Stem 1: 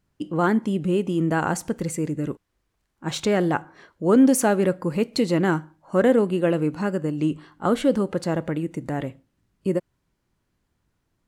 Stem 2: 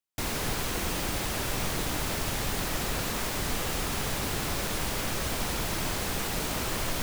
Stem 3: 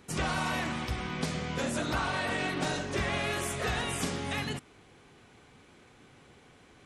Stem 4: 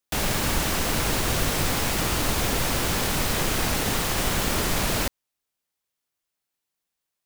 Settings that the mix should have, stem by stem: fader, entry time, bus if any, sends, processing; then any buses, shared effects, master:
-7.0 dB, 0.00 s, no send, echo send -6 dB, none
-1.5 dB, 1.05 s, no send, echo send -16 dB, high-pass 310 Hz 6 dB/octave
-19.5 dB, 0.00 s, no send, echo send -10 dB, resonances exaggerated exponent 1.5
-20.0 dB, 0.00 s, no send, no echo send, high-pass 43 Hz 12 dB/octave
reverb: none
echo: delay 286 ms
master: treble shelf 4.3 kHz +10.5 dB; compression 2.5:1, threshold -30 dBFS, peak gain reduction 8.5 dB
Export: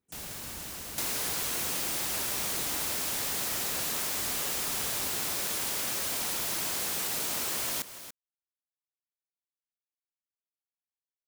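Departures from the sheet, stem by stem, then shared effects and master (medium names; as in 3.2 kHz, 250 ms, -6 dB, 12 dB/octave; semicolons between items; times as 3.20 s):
stem 1: muted; stem 2: entry 1.05 s -> 0.80 s; stem 3 -19.5 dB -> -29.5 dB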